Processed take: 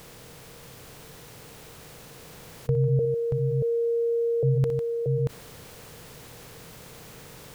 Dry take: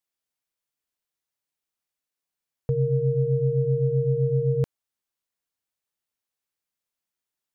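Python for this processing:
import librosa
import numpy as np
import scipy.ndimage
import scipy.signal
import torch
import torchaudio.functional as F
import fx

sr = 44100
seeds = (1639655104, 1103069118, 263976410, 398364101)

y = fx.bin_compress(x, sr, power=0.6)
y = fx.bessel_highpass(y, sr, hz=520.0, order=8, at=(2.99, 4.43))
y = fx.rider(y, sr, range_db=10, speed_s=2.0)
y = fx.echo_multitap(y, sr, ms=(61, 151, 631), db=(-13.5, -13.0, -6.0))
y = fx.env_flatten(y, sr, amount_pct=50)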